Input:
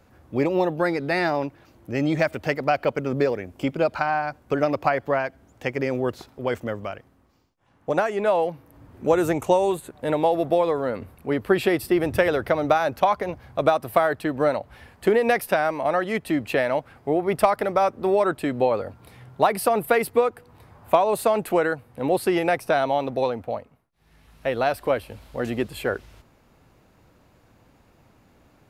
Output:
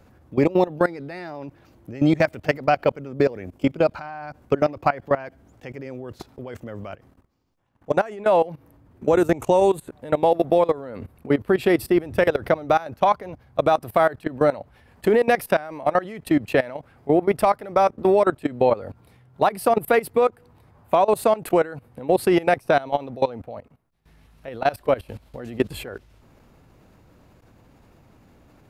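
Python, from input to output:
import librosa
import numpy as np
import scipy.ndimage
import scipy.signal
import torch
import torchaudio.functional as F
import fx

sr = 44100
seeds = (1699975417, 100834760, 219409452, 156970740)

y = fx.low_shelf(x, sr, hz=470.0, db=4.5)
y = fx.level_steps(y, sr, step_db=19)
y = F.gain(torch.from_numpy(y), 3.5).numpy()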